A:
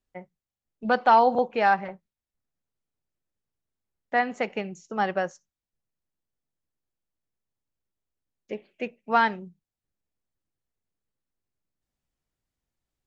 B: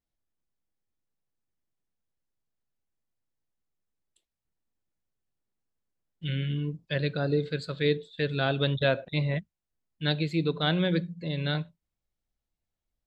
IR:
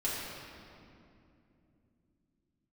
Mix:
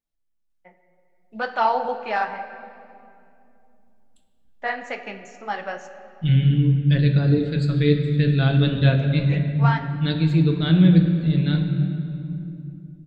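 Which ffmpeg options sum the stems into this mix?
-filter_complex "[0:a]lowshelf=f=440:g=-11.5,flanger=delay=0.9:depth=7.4:regen=-39:speed=2:shape=triangular,adelay=500,volume=0.5dB,asplit=2[a][b];[b]volume=-12.5dB[c];[1:a]bandreject=f=50:t=h:w=6,bandreject=f=100:t=h:w=6,bandreject=f=150:t=h:w=6,asubboost=boost=7:cutoff=210,volume=-1dB,asplit=2[d][e];[e]volume=-7.5dB[f];[2:a]atrim=start_sample=2205[g];[c][f]amix=inputs=2:normalize=0[h];[h][g]afir=irnorm=-1:irlink=0[i];[a][d][i]amix=inputs=3:normalize=0,dynaudnorm=f=320:g=7:m=6.5dB,flanger=delay=7.1:depth=7.8:regen=-64:speed=0.3:shape=sinusoidal"

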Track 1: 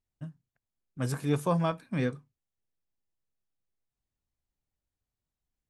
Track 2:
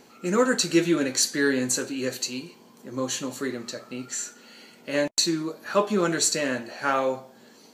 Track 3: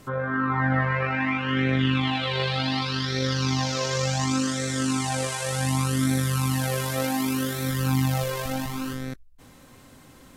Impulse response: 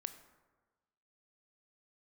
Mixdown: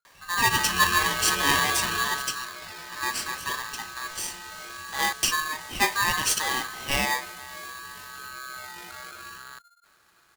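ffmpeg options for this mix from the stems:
-filter_complex "[0:a]aecho=1:1:3.1:0.38,volume=-3.5dB[a];[1:a]adelay=50,volume=-1.5dB[b];[2:a]alimiter=limit=-20.5dB:level=0:latency=1:release=23,adelay=450,volume=-0.5dB,afade=t=out:st=2:d=0.38:silence=0.281838[c];[a][b][c]amix=inputs=3:normalize=0,aeval=exprs='val(0)*sgn(sin(2*PI*1400*n/s))':c=same"

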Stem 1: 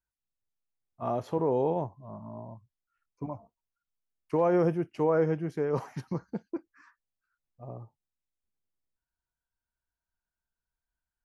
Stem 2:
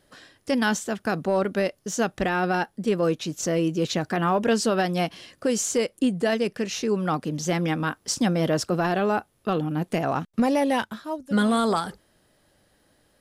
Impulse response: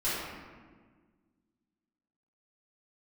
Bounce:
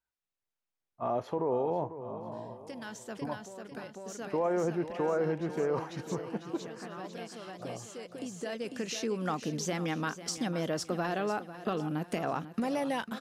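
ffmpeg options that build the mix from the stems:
-filter_complex "[0:a]lowshelf=f=210:g=-10.5,alimiter=level_in=1dB:limit=-24dB:level=0:latency=1:release=36,volume=-1dB,volume=3dB,asplit=3[a][b][c];[b]volume=-12.5dB[d];[1:a]highshelf=f=4.3k:g=10,acompressor=threshold=-27dB:ratio=6,lowshelf=f=110:g=-9.5,adelay=2200,volume=-1dB,asplit=2[e][f];[f]volume=-13.5dB[g];[c]apad=whole_len=679428[h];[e][h]sidechaincompress=threshold=-49dB:ratio=6:attack=6.4:release=1290[i];[d][g]amix=inputs=2:normalize=0,aecho=0:1:497|994|1491|1988|2485|2982:1|0.41|0.168|0.0689|0.0283|0.0116[j];[a][i][j]amix=inputs=3:normalize=0,highshelf=f=5.2k:g=-10.5"

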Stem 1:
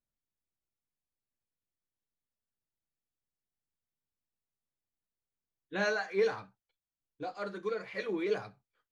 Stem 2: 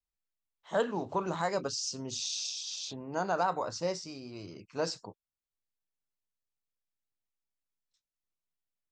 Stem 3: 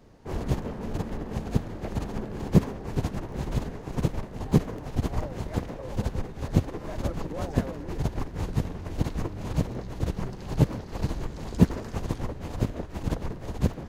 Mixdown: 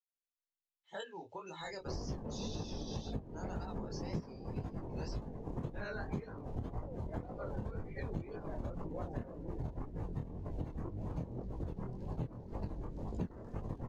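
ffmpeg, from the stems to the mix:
-filter_complex "[0:a]volume=-3.5dB[a];[1:a]highshelf=f=1.6k:t=q:w=1.5:g=7.5,aecho=1:1:2.3:0.34,acrossover=split=620|3100[b][c][d];[b]acompressor=threshold=-39dB:ratio=4[e];[c]acompressor=threshold=-35dB:ratio=4[f];[d]acompressor=threshold=-38dB:ratio=4[g];[e][f][g]amix=inputs=3:normalize=0,adelay=200,volume=-5.5dB[h];[2:a]adelay=1600,volume=0dB[i];[a][h][i]amix=inputs=3:normalize=0,afftdn=nr=17:nf=-41,flanger=delay=18.5:depth=7.9:speed=1.9,acompressor=threshold=-37dB:ratio=6"

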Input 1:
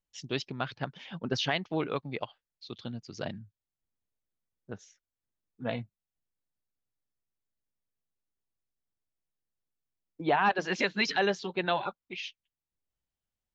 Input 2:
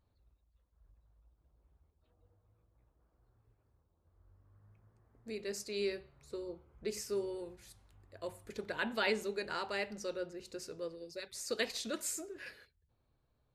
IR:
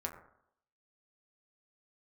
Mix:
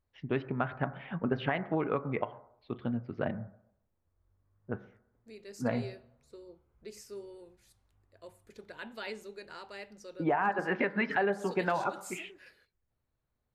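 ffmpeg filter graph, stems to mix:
-filter_complex "[0:a]lowpass=f=2.1k:w=0.5412,lowpass=f=2.1k:w=1.3066,volume=2dB,asplit=2[a][b];[b]volume=-6.5dB[c];[1:a]volume=-8dB[d];[2:a]atrim=start_sample=2205[e];[c][e]afir=irnorm=-1:irlink=0[f];[a][d][f]amix=inputs=3:normalize=0,acompressor=threshold=-26dB:ratio=5"

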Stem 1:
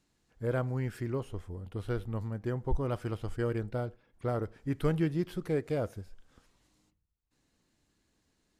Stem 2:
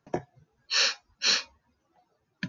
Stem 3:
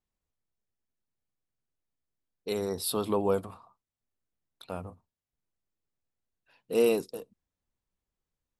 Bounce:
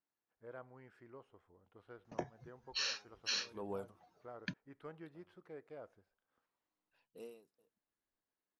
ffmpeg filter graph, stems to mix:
-filter_complex "[0:a]bandpass=f=1k:t=q:w=0.8:csg=0,volume=-14.5dB,asplit=2[a][b];[1:a]adelay=2050,volume=3dB[c];[2:a]aeval=exprs='val(0)*pow(10,-27*(0.5-0.5*cos(2*PI*0.92*n/s))/20)':c=same,adelay=450,volume=-13dB[d];[b]apad=whole_len=200096[e];[c][e]sidechaincompress=threshold=-53dB:ratio=8:attack=10:release=1240[f];[a][f][d]amix=inputs=3:normalize=0,acompressor=threshold=-37dB:ratio=4"

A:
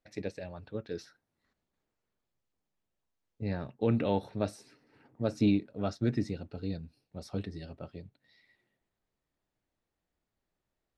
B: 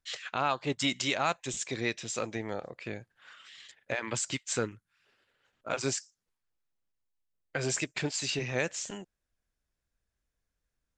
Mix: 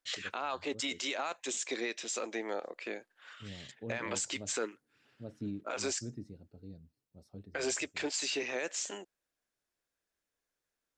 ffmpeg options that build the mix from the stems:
-filter_complex "[0:a]equalizer=f=2.3k:t=o:w=2.8:g=-12.5,volume=-12.5dB[a];[1:a]highpass=f=280:w=0.5412,highpass=f=280:w=1.3066,volume=0.5dB[b];[a][b]amix=inputs=2:normalize=0,alimiter=level_in=1dB:limit=-24dB:level=0:latency=1:release=36,volume=-1dB"

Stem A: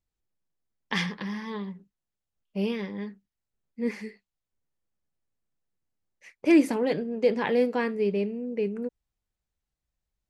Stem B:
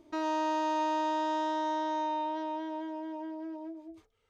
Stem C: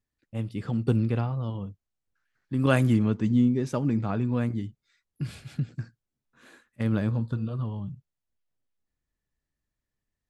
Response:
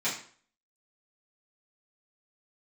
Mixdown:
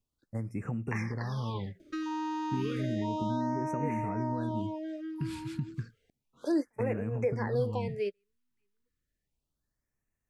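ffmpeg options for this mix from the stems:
-filter_complex "[0:a]highpass=530,volume=0.5dB[a];[1:a]adelay=1800,volume=1.5dB[b];[2:a]alimiter=limit=-18.5dB:level=0:latency=1,acompressor=threshold=-30dB:ratio=16,volume=0dB,asplit=2[c][d];[d]apad=whole_len=453976[e];[a][e]sidechaingate=range=-45dB:threshold=-56dB:ratio=16:detection=peak[f];[f][b][c]amix=inputs=3:normalize=0,acrossover=split=460[g][h];[h]acompressor=threshold=-35dB:ratio=8[i];[g][i]amix=inputs=2:normalize=0,afftfilt=real='re*(1-between(b*sr/1024,580*pow(4100/580,0.5+0.5*sin(2*PI*0.32*pts/sr))/1.41,580*pow(4100/580,0.5+0.5*sin(2*PI*0.32*pts/sr))*1.41))':imag='im*(1-between(b*sr/1024,580*pow(4100/580,0.5+0.5*sin(2*PI*0.32*pts/sr))/1.41,580*pow(4100/580,0.5+0.5*sin(2*PI*0.32*pts/sr))*1.41))':win_size=1024:overlap=0.75"

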